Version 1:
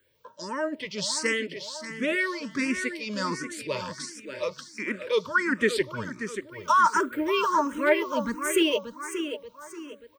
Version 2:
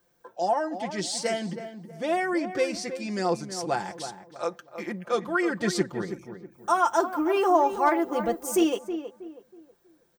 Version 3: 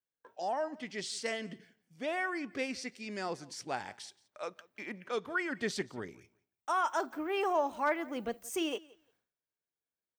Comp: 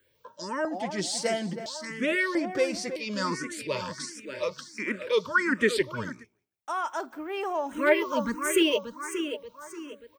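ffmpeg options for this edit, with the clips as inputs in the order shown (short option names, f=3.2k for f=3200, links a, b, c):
-filter_complex "[1:a]asplit=2[a][b];[0:a]asplit=4[c][d][e][f];[c]atrim=end=0.652[g];[a]atrim=start=0.648:end=1.662[h];[d]atrim=start=1.658:end=2.352[i];[b]atrim=start=2.348:end=2.962[j];[e]atrim=start=2.958:end=6.25[k];[2:a]atrim=start=6.09:end=7.8[l];[f]atrim=start=7.64[m];[g][h]acrossfade=d=0.004:c1=hsin:c2=hsin[n];[n][i]acrossfade=d=0.004:c1=hsin:c2=hsin[o];[o][j]acrossfade=d=0.004:c1=hsin:c2=hsin[p];[p][k]acrossfade=d=0.004:c1=hsin:c2=hsin[q];[q][l]acrossfade=d=0.16:c1=tri:c2=tri[r];[r][m]acrossfade=d=0.16:c1=tri:c2=tri"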